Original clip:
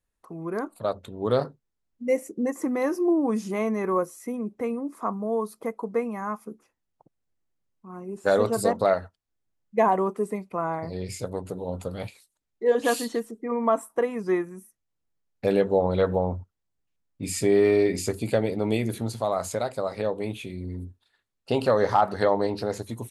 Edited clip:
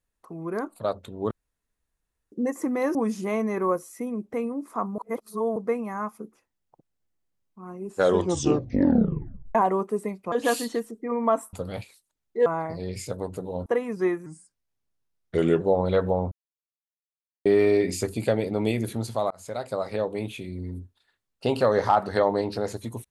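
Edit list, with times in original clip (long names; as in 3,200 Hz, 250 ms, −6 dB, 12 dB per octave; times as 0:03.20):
0:01.31–0:02.32: fill with room tone
0:02.95–0:03.22: remove
0:05.25–0:05.83: reverse
0:08.22: tape stop 1.60 s
0:10.59–0:11.79: swap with 0:12.72–0:13.93
0:14.53–0:15.66: play speed 84%
0:16.37–0:17.51: silence
0:19.36–0:19.78: fade in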